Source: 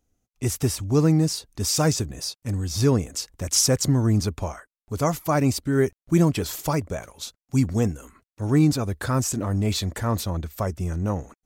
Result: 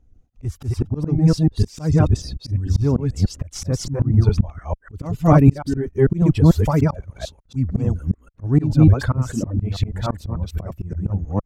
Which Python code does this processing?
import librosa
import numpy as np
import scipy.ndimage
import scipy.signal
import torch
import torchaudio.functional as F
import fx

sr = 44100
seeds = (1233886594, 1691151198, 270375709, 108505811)

p1 = fx.reverse_delay(x, sr, ms=148, wet_db=0)
p2 = fx.clip_asym(p1, sr, top_db=-24.0, bottom_db=-10.0)
p3 = p1 + (p2 * 10.0 ** (-7.0 / 20.0))
p4 = fx.dereverb_blind(p3, sr, rt60_s=1.9)
p5 = fx.riaa(p4, sr, side='playback')
y = fx.auto_swell(p5, sr, attack_ms=303.0)